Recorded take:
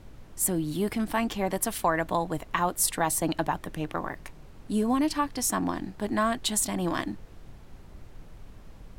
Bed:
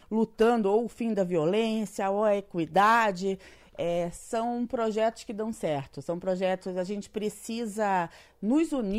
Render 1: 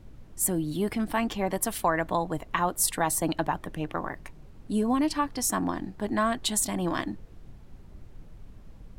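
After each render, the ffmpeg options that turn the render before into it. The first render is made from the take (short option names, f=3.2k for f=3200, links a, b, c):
-af "afftdn=nr=6:nf=-49"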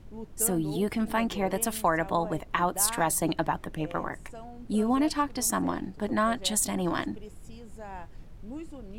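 -filter_complex "[1:a]volume=-15.5dB[a];[0:a][a]amix=inputs=2:normalize=0"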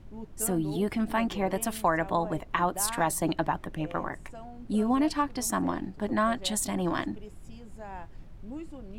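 -af "highshelf=f=4.6k:g=-5,bandreject=f=460:w=12"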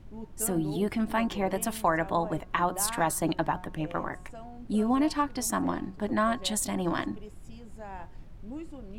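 -af "bandreject=f=181.5:t=h:w=4,bandreject=f=363:t=h:w=4,bandreject=f=544.5:t=h:w=4,bandreject=f=726:t=h:w=4,bandreject=f=907.5:t=h:w=4,bandreject=f=1.089k:t=h:w=4,bandreject=f=1.2705k:t=h:w=4,bandreject=f=1.452k:t=h:w=4,bandreject=f=1.6335k:t=h:w=4"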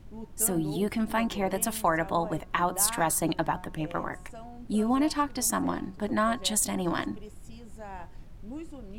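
-af "highshelf=f=4.6k:g=5.5"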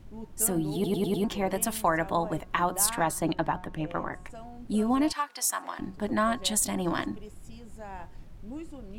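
-filter_complex "[0:a]asettb=1/sr,asplit=3[a][b][c];[a]atrim=end=2.934[d];[b]atrim=start=2.93:end=4.3,asetpts=PTS-STARTPTS,afade=t=in:d=0.004:c=qsin,afade=t=out:st=1.366:d=0.004:c=qsin,highshelf=f=5.9k:g=-9.5[e];[c]atrim=start=4.296[f];[d][e]acrossfade=d=0.004:c1=hsin:c2=qsin[g];[g][f]acrossfade=d=0.004:c1=qsin:c2=hsin,asettb=1/sr,asplit=3[h][i][j];[h]atrim=end=5.124[k];[i]atrim=start=5.12:end=5.79,asetpts=PTS-STARTPTS,afade=t=in:d=0.004:c=qsin,afade=t=out:st=0.666:d=0.004:c=qsin,highpass=920[l];[j]atrim=start=5.786[m];[k][l]acrossfade=d=0.004:c1=hsin:c2=qsin[n];[n][m]acrossfade=d=0.004:c1=qsin:c2=hsin,asplit=6[o][p][q][r][s][t];[o]atrim=end=0.842[u];[p]atrim=start=0.738:end=0.842[v];[q]atrim=start=0.738:end=0.842[w];[r]atrim=start=0.738:end=0.842[x];[s]atrim=start=0.738:end=0.842[y];[t]atrim=start=1.238[z];[u][v]acrossfade=d=0.004:c1=hsin:c2=hsin[aa];[aa][w]acrossfade=d=0.004:c1=hsin:c2=hsin[ab];[ab][x]acrossfade=d=0.004:c1=hsin:c2=hsin[ac];[ac][y]acrossfade=d=0.004:c1=hsin:c2=hsin[ad];[ad][z]acrossfade=d=0.004:c1=hsin:c2=hsin"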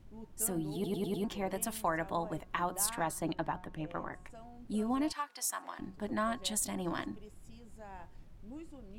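-af "volume=-7.5dB"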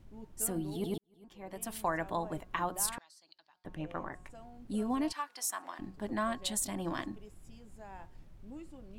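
-filter_complex "[0:a]asettb=1/sr,asplit=3[a][b][c];[a]atrim=end=2.984[d];[b]atrim=start=2.98:end=3.65,asetpts=PTS-STARTPTS,afade=t=in:d=0.004:c=qsin,afade=t=out:st=0.666:d=0.004:c=qsin,bandpass=f=4.6k:t=q:w=6.9[e];[c]atrim=start=3.646[f];[d][e]acrossfade=d=0.004:c1=hsin:c2=qsin[g];[g][f]acrossfade=d=0.004:c1=qsin:c2=hsin,asplit=2[h][i];[h]atrim=end=0.98,asetpts=PTS-STARTPTS,afade=t=out:st=0.976:d=0.004:c=hsin[j];[i]atrim=start=0.98,asetpts=PTS-STARTPTS,afade=t=in:d=0.85:c=qua[k];[j][k]concat=n=2:v=0:a=1"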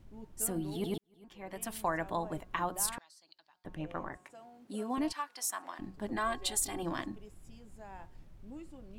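-filter_complex "[0:a]asettb=1/sr,asplit=3[a][b][c];[a]atrim=end=0.624[d];[b]atrim=start=0.62:end=1.69,asetpts=PTS-STARTPTS,afade=t=in:d=0.004:c=qsin,afade=t=out:st=1.066:d=0.004:c=qsin,equalizer=f=2k:w=0.84:g=5[e];[c]atrim=start=1.686[f];[d][e]acrossfade=d=0.004:c1=hsin:c2=qsin[g];[g][f]acrossfade=d=0.004:c1=qsin:c2=hsin,asettb=1/sr,asplit=3[h][i][j];[h]atrim=end=4.174[k];[i]atrim=start=4.17:end=4.98,asetpts=PTS-STARTPTS,afade=t=in:d=0.004:c=qsin,afade=t=out:st=0.806:d=0.004:c=qsin,highpass=280[l];[j]atrim=start=4.976[m];[k][l]acrossfade=d=0.004:c1=hsin:c2=qsin[n];[n][m]acrossfade=d=0.004:c1=qsin:c2=hsin,asettb=1/sr,asplit=3[o][p][q];[o]atrim=end=6.164[r];[p]atrim=start=6.16:end=6.83,asetpts=PTS-STARTPTS,afade=t=in:d=0.004:c=qsin,afade=t=out:st=0.666:d=0.004:c=qsin,aecho=1:1:2.5:0.78,atrim=end_sample=29547[s];[q]atrim=start=6.826[t];[r][s]acrossfade=d=0.004:c1=hsin:c2=qsin[u];[u][t]acrossfade=d=0.004:c1=qsin:c2=hsin"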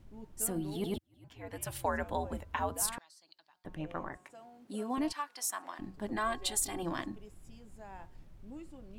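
-filter_complex "[0:a]asettb=1/sr,asplit=3[a][b][c];[a]atrim=end=0.964[d];[b]atrim=start=0.96:end=2.82,asetpts=PTS-STARTPTS,afade=t=in:d=0.004:c=qsin,afade=t=out:st=1.856:d=0.004:c=qsin,afreqshift=-90[e];[c]atrim=start=2.816[f];[d][e]acrossfade=d=0.004:c1=hsin:c2=qsin[g];[g][f]acrossfade=d=0.004:c1=qsin:c2=hsin"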